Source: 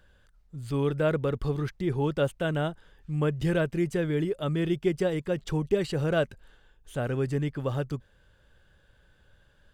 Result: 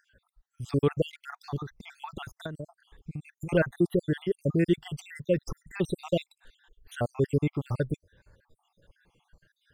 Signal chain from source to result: random spectral dropouts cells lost 67%; spectral noise reduction 9 dB; 1.56–3.49 compressor 8:1, threshold -39 dBFS, peak gain reduction 15.5 dB; gain +4 dB

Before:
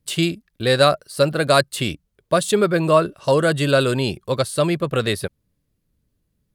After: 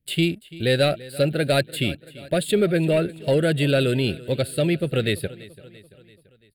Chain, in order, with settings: sample leveller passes 1; fixed phaser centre 2600 Hz, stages 4; feedback echo 0.338 s, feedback 55%, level -19.5 dB; gain -3.5 dB

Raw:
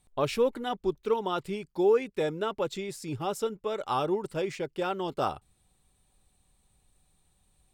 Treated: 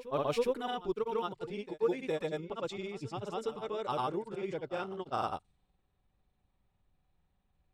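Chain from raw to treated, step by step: grains 0.1 s, grains 20/s, pitch spread up and down by 0 st; low-pass opened by the level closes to 2300 Hz, open at -25.5 dBFS; reverse echo 0.412 s -15 dB; gain -4.5 dB

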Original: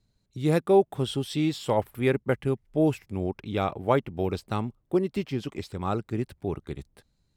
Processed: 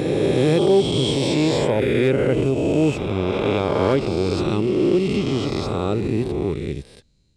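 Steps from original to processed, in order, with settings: spectral swells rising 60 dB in 2.38 s; LPF 8800 Hz 24 dB/oct; band shelf 1100 Hz -8 dB; in parallel at -0.5 dB: limiter -19 dBFS, peak gain reduction 9.5 dB; on the sum: one-sided clip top -10 dBFS, bottom -8.5 dBFS; on a send: reverse echo 0.47 s -10 dB

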